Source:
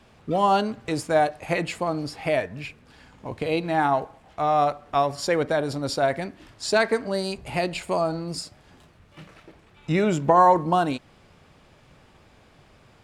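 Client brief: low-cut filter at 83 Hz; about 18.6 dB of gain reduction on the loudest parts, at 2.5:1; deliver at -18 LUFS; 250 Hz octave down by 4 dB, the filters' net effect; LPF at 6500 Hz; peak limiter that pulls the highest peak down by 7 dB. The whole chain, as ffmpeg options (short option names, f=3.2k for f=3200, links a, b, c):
-af "highpass=83,lowpass=6.5k,equalizer=f=250:t=o:g=-6,acompressor=threshold=-42dB:ratio=2.5,volume=23dB,alimiter=limit=-6.5dB:level=0:latency=1"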